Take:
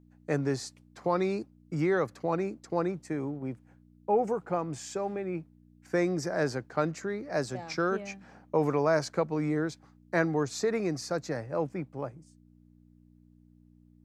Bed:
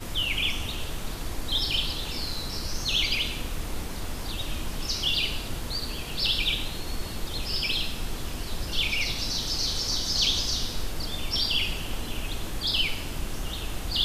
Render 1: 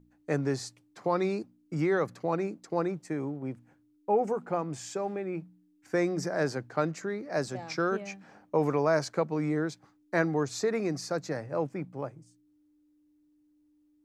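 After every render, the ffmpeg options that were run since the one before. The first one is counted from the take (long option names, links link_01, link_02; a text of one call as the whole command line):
ffmpeg -i in.wav -af "bandreject=frequency=60:width_type=h:width=4,bandreject=frequency=120:width_type=h:width=4,bandreject=frequency=180:width_type=h:width=4,bandreject=frequency=240:width_type=h:width=4" out.wav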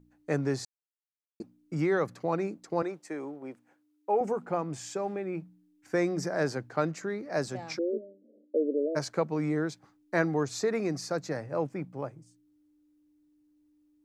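ffmpeg -i in.wav -filter_complex "[0:a]asettb=1/sr,asplit=3[link_01][link_02][link_03];[link_01]atrim=end=2.824[link_04];[link_02]atrim=start=2.82:end=4.21,asetpts=PTS-STARTPTS,afade=type=in:duration=0.004:curve=qsin,afade=type=out:start_time=1.386:duration=0.004:curve=qsin,highpass=350[link_05];[link_03]atrim=start=4.206[link_06];[link_04][link_05]acrossfade=duration=0.004:curve1=hsin:curve2=qsin[link_07];[link_07][link_06]acrossfade=duration=0.004:curve1=qsin:curve2=hsin,asplit=3[link_08][link_09][link_10];[link_08]afade=type=out:start_time=7.77:duration=0.02[link_11];[link_09]asuperpass=centerf=360:order=20:qfactor=0.95,afade=type=in:start_time=7.77:duration=0.02,afade=type=out:start_time=8.95:duration=0.02[link_12];[link_10]afade=type=in:start_time=8.95:duration=0.02[link_13];[link_11][link_12][link_13]amix=inputs=3:normalize=0,asplit=3[link_14][link_15][link_16];[link_14]atrim=end=0.65,asetpts=PTS-STARTPTS,afade=type=out:start_time=0.646:duration=0.004:curve=hsin[link_17];[link_15]atrim=start=0.65:end=1.4,asetpts=PTS-STARTPTS,volume=0[link_18];[link_16]atrim=start=1.4,asetpts=PTS-STARTPTS,afade=type=in:duration=0.004:curve=hsin[link_19];[link_17][link_18][link_19]concat=n=3:v=0:a=1" out.wav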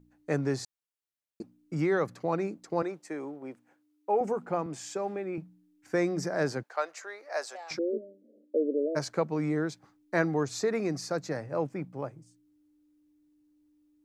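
ffmpeg -i in.wav -filter_complex "[0:a]asettb=1/sr,asplit=3[link_01][link_02][link_03];[link_01]atrim=end=4.664[link_04];[link_02]atrim=start=4.66:end=5.38,asetpts=PTS-STARTPTS,afade=type=in:duration=0.004:curve=qsin,afade=type=out:start_time=0.716:duration=0.004:curve=qsin,highpass=180[link_05];[link_03]atrim=start=5.376[link_06];[link_04][link_05]acrossfade=duration=0.004:curve1=hsin:curve2=qsin[link_07];[link_07][link_06]acrossfade=duration=0.004:curve1=qsin:curve2=hsin,asettb=1/sr,asplit=3[link_08][link_09][link_10];[link_08]atrim=end=6.634[link_11];[link_09]atrim=start=6.63:end=7.71,asetpts=PTS-STARTPTS,afade=type=in:duration=0.004:curve=qsin,afade=type=out:start_time=1.076:duration=0.004:curve=qsin,highpass=frequency=570:width=0.5412,highpass=frequency=570:width=1.3066[link_12];[link_10]atrim=start=7.706[link_13];[link_11][link_12]acrossfade=duration=0.004:curve1=hsin:curve2=qsin[link_14];[link_14][link_13]acrossfade=duration=0.004:curve1=qsin:curve2=hsin" out.wav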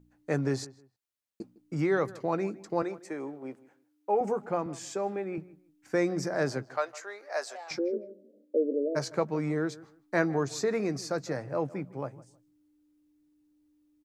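ffmpeg -i in.wav -filter_complex "[0:a]asplit=2[link_01][link_02];[link_02]adelay=15,volume=-14dB[link_03];[link_01][link_03]amix=inputs=2:normalize=0,asplit=2[link_04][link_05];[link_05]adelay=157,lowpass=frequency=2200:poles=1,volume=-19dB,asplit=2[link_06][link_07];[link_07]adelay=157,lowpass=frequency=2200:poles=1,volume=0.24[link_08];[link_04][link_06][link_08]amix=inputs=3:normalize=0" out.wav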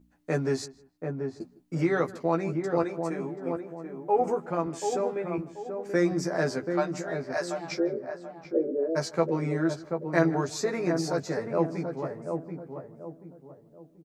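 ffmpeg -i in.wav -filter_complex "[0:a]asplit=2[link_01][link_02];[link_02]adelay=12,volume=-2.5dB[link_03];[link_01][link_03]amix=inputs=2:normalize=0,asplit=2[link_04][link_05];[link_05]adelay=734,lowpass=frequency=910:poles=1,volume=-4.5dB,asplit=2[link_06][link_07];[link_07]adelay=734,lowpass=frequency=910:poles=1,volume=0.39,asplit=2[link_08][link_09];[link_09]adelay=734,lowpass=frequency=910:poles=1,volume=0.39,asplit=2[link_10][link_11];[link_11]adelay=734,lowpass=frequency=910:poles=1,volume=0.39,asplit=2[link_12][link_13];[link_13]adelay=734,lowpass=frequency=910:poles=1,volume=0.39[link_14];[link_04][link_06][link_08][link_10][link_12][link_14]amix=inputs=6:normalize=0" out.wav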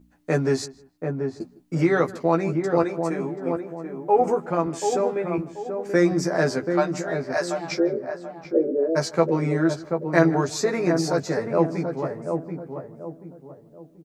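ffmpeg -i in.wav -af "volume=5.5dB" out.wav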